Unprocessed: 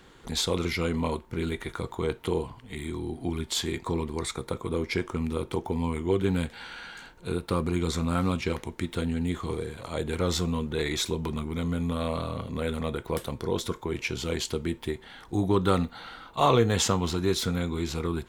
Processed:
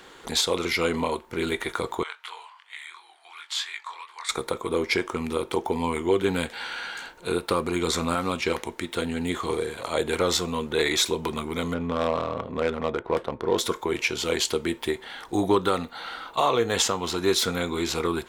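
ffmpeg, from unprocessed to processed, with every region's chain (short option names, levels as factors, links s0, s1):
-filter_complex "[0:a]asettb=1/sr,asplit=3[s0][s1][s2];[s0]atrim=end=2.034[s3];[s1]atrim=start=2.03:end=4.29,asetpts=PTS-STARTPTS,afade=t=in:d=0.004:c=qsin,afade=t=out:st=2.256:d=0.004:c=qsin,highpass=f=1100:w=0.5412,highpass=f=1100:w=1.3066,aemphasis=mode=reproduction:type=50fm,flanger=delay=19:depth=6.4:speed=2.9[s4];[s2]atrim=start=4.286[s5];[s3][s4]acrossfade=d=0.004:c1=hsin:c2=qsin[s6];[s6][s5]acrossfade=d=0.004:c1=qsin:c2=hsin,asettb=1/sr,asplit=3[s7][s8][s9];[s7]atrim=end=11.744[s10];[s8]atrim=start=11.74:end=13.58,asetpts=PTS-STARTPTS,afade=t=in:d=0.004:c=qsin,afade=t=out:st=1.836:d=0.004:c=qsin,highshelf=f=8100:g=5,adynamicsmooth=sensitivity=2.5:basefreq=1300[s11];[s9]atrim=start=13.576[s12];[s10][s11]acrossfade=d=0.004:c1=hsin:c2=qsin[s13];[s13][s12]acrossfade=d=0.004:c1=qsin:c2=hsin,bass=f=250:g=-14,treble=f=4000:g=0,alimiter=limit=0.112:level=0:latency=1:release=454,volume=2.51"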